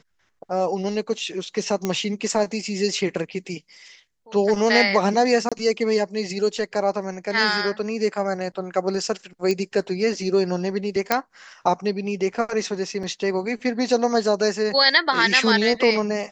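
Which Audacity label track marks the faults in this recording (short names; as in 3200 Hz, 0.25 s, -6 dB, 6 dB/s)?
1.850000	1.850000	pop -10 dBFS
5.490000	5.520000	gap 26 ms
9.510000	9.510000	pop -12 dBFS
11.120000	11.120000	pop -3 dBFS
13.030000	13.030000	gap 3.5 ms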